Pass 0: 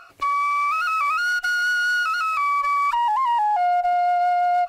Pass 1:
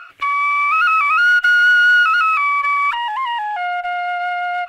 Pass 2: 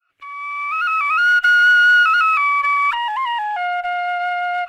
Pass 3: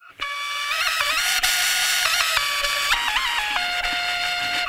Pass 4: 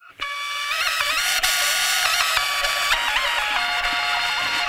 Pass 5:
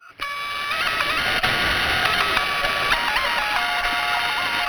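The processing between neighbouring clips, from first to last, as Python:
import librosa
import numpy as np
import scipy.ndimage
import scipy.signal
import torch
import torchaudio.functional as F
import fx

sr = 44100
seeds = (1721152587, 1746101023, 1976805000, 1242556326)

y1 = fx.band_shelf(x, sr, hz=2100.0, db=13.0, octaves=1.7)
y1 = F.gain(torch.from_numpy(y1), -3.0).numpy()
y2 = fx.fade_in_head(y1, sr, length_s=1.51)
y3 = fx.spectral_comp(y2, sr, ratio=10.0)
y3 = F.gain(torch.from_numpy(y3), 5.0).numpy()
y4 = fx.echo_stepped(y3, sr, ms=607, hz=600.0, octaves=0.7, feedback_pct=70, wet_db=-0.5)
y5 = np.interp(np.arange(len(y4)), np.arange(len(y4))[::6], y4[::6])
y5 = F.gain(torch.from_numpy(y5), 2.0).numpy()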